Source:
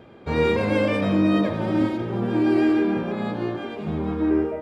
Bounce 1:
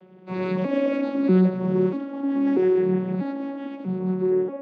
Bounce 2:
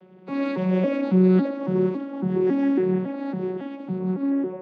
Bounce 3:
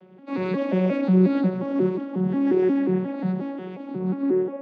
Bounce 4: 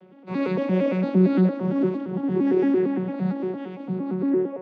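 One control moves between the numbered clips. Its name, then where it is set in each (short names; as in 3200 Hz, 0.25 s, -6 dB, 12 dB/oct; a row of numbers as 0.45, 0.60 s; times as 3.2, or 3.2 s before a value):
arpeggiated vocoder, a note every: 0.64, 0.277, 0.179, 0.114 s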